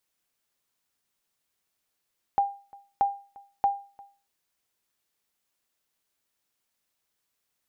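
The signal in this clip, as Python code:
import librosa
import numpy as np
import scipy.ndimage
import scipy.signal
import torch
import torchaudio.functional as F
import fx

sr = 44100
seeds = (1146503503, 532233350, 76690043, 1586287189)

y = fx.sonar_ping(sr, hz=800.0, decay_s=0.37, every_s=0.63, pings=3, echo_s=0.35, echo_db=-25.0, level_db=-15.5)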